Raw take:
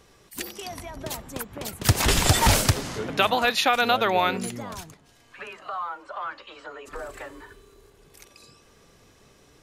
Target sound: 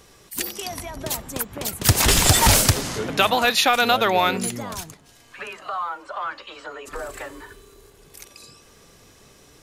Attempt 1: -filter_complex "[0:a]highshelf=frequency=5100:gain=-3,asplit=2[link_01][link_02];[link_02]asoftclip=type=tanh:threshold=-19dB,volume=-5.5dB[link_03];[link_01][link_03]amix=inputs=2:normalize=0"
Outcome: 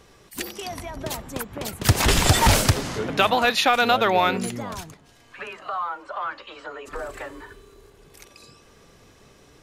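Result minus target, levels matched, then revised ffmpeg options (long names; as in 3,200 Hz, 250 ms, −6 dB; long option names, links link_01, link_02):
8,000 Hz band −4.5 dB
-filter_complex "[0:a]highshelf=frequency=5100:gain=6.5,asplit=2[link_01][link_02];[link_02]asoftclip=type=tanh:threshold=-19dB,volume=-5.5dB[link_03];[link_01][link_03]amix=inputs=2:normalize=0"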